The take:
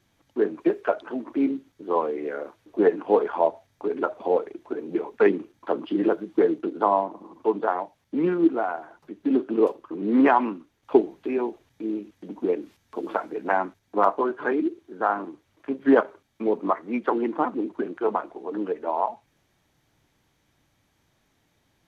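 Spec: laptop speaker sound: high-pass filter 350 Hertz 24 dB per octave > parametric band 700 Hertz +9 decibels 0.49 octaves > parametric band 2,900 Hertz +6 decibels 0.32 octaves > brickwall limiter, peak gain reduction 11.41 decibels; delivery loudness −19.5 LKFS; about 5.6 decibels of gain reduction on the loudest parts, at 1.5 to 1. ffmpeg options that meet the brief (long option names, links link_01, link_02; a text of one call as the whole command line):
ffmpeg -i in.wav -af "acompressor=threshold=-28dB:ratio=1.5,highpass=frequency=350:width=0.5412,highpass=frequency=350:width=1.3066,equalizer=frequency=700:width_type=o:width=0.49:gain=9,equalizer=frequency=2900:width_type=o:width=0.32:gain=6,volume=12.5dB,alimiter=limit=-6dB:level=0:latency=1" out.wav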